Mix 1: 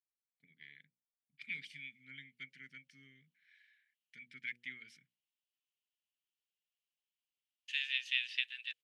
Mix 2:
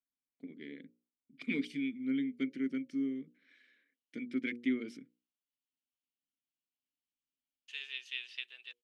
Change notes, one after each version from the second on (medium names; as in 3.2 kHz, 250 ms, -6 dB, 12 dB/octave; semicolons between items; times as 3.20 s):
first voice +9.0 dB; master: remove FFT filter 150 Hz 0 dB, 280 Hz -26 dB, 1.1 kHz -11 dB, 1.7 kHz +8 dB, 5.9 kHz +4 dB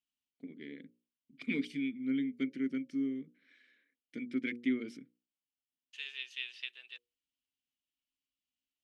second voice: entry -1.75 s; master: add peaking EQ 66 Hz +14.5 dB 0.78 oct